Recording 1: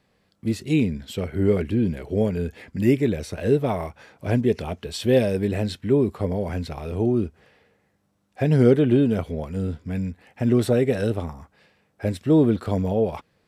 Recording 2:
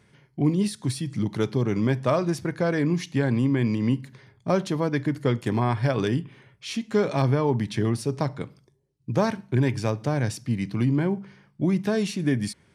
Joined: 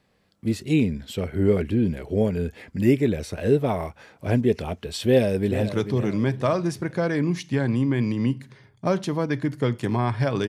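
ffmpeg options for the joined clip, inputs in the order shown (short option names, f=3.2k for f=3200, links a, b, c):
-filter_complex "[0:a]apad=whole_dur=10.48,atrim=end=10.48,atrim=end=5.692[a];[1:a]atrim=start=1.318:end=6.11[b];[a][b]acrossfade=d=0.004:c1=hsin:c2=hsin,asplit=2[c][d];[d]afade=t=in:st=5.01:d=0.01,afade=t=out:st=5.69:d=0.01,aecho=0:1:440|880|1320|1760:0.281838|0.0986434|0.0345252|0.0120838[e];[c][e]amix=inputs=2:normalize=0"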